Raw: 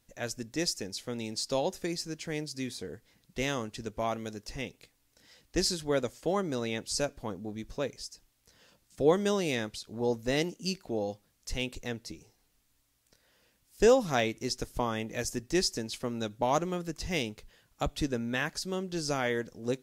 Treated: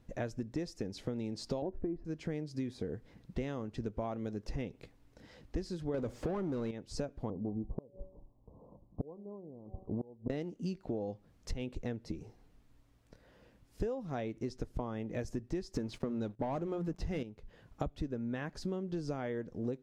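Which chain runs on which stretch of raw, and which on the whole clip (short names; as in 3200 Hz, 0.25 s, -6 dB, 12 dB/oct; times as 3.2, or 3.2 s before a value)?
1.62–2.05 LPF 1600 Hz + tilt -3 dB/oct + comb 3 ms, depth 49%
5.94–6.71 zero-crossing step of -44 dBFS + sample leveller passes 3
7.3–10.3 steep low-pass 1100 Hz 96 dB/oct + de-hum 189.1 Hz, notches 4 + flipped gate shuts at -25 dBFS, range -28 dB
15.74–17.23 notches 60/120/180 Hz + sample leveller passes 3
whole clip: LPF 1300 Hz 6 dB/oct; tilt shelf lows +3.5 dB, about 660 Hz; compressor 16:1, threshold -42 dBFS; gain +8.5 dB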